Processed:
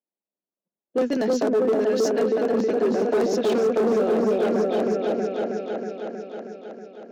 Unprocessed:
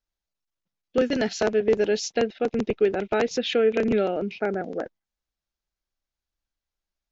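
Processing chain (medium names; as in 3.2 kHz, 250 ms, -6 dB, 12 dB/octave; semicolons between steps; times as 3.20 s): level-controlled noise filter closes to 710 Hz, open at -21.5 dBFS; 1.72–2.18 s: bass shelf 450 Hz -10 dB; on a send: delay with an opening low-pass 318 ms, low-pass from 750 Hz, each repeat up 1 oct, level 0 dB; on the sum: hard clipper -18 dBFS, distortion -11 dB; high-pass 200 Hz 24 dB/octave; in parallel at -8.5 dB: saturation -21.5 dBFS, distortion -13 dB; on the sum: peaking EQ 2.6 kHz -8.5 dB 1.7 oct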